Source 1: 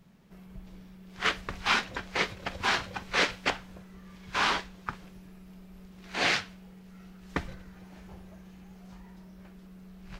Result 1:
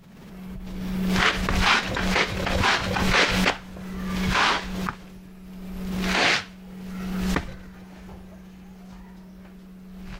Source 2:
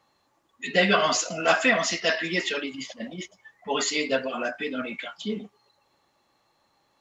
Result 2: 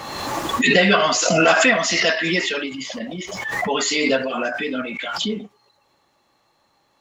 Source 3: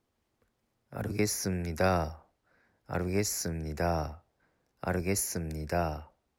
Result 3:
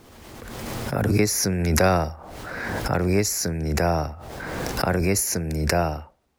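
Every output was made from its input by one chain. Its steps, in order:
swell ahead of each attack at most 28 dB/s; peak normalisation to -3 dBFS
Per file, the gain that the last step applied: +5.0 dB, +4.5 dB, +7.5 dB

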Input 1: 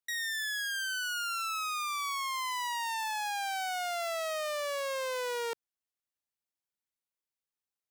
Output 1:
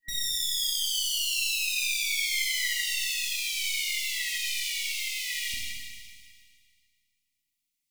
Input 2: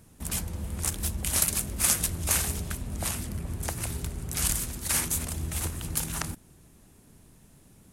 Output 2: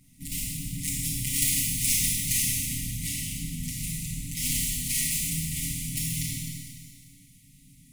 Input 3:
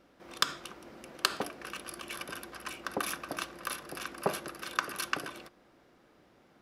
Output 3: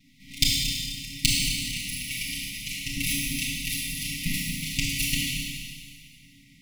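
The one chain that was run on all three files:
comb filter that takes the minimum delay 6.7 ms; FFT band-reject 280–1900 Hz; Schroeder reverb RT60 2 s, combs from 25 ms, DRR -4 dB; normalise loudness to -27 LUFS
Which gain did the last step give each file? +6.5 dB, -2.0 dB, +8.0 dB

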